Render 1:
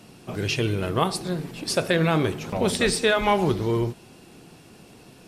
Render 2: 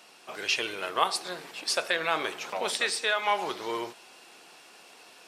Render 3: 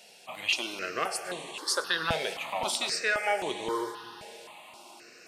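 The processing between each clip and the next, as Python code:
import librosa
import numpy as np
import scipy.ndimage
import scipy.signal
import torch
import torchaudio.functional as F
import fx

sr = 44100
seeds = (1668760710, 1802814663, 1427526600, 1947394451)

y1 = scipy.signal.sosfilt(scipy.signal.butter(2, 790.0, 'highpass', fs=sr, output='sos'), x)
y1 = fx.peak_eq(y1, sr, hz=12000.0, db=-6.0, octaves=0.84)
y1 = fx.rider(y1, sr, range_db=3, speed_s=0.5)
y2 = fx.rev_plate(y1, sr, seeds[0], rt60_s=4.7, hf_ratio=0.95, predelay_ms=85, drr_db=11.5)
y2 = fx.phaser_held(y2, sr, hz=3.8, low_hz=310.0, high_hz=5000.0)
y2 = y2 * 10.0 ** (2.5 / 20.0)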